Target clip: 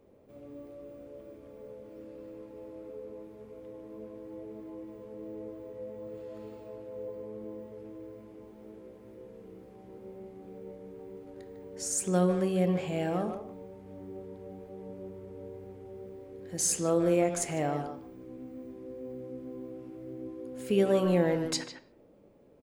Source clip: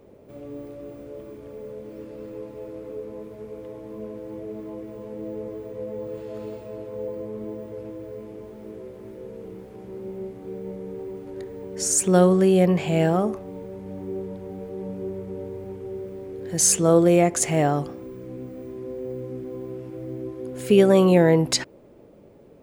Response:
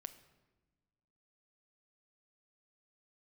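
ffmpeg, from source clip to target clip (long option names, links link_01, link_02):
-filter_complex "[0:a]asplit=2[link_01][link_02];[link_02]adelay=150,highpass=300,lowpass=3400,asoftclip=type=hard:threshold=-14.5dB,volume=-7dB[link_03];[link_01][link_03]amix=inputs=2:normalize=0[link_04];[1:a]atrim=start_sample=2205,afade=type=out:start_time=0.43:duration=0.01,atrim=end_sample=19404,asetrate=79380,aresample=44100[link_05];[link_04][link_05]afir=irnorm=-1:irlink=0"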